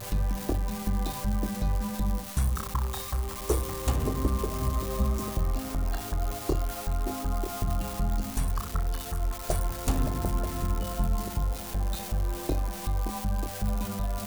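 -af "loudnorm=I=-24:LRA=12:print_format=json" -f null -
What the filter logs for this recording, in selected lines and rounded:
"input_i" : "-31.2",
"input_tp" : "-13.1",
"input_lra" : "1.7",
"input_thresh" : "-41.2",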